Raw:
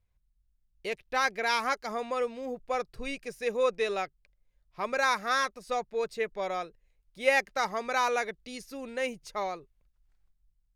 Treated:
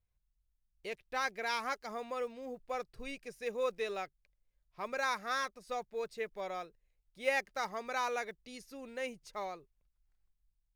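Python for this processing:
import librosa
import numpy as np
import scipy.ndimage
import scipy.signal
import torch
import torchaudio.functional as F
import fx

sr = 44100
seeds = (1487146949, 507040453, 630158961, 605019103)

y = fx.block_float(x, sr, bits=7)
y = F.gain(torch.from_numpy(y), -7.5).numpy()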